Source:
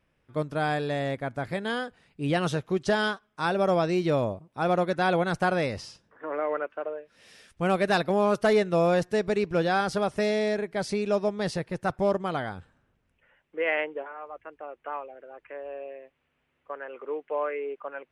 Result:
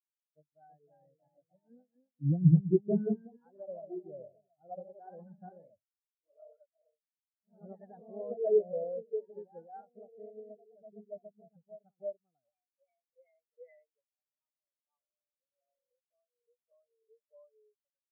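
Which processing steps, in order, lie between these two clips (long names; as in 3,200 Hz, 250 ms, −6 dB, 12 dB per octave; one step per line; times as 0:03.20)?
0:01.70–0:03.26: spectral tilt −3 dB per octave
delay with pitch and tempo change per echo 344 ms, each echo +1 semitone, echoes 3
every bin expanded away from the loudest bin 4 to 1
level −5.5 dB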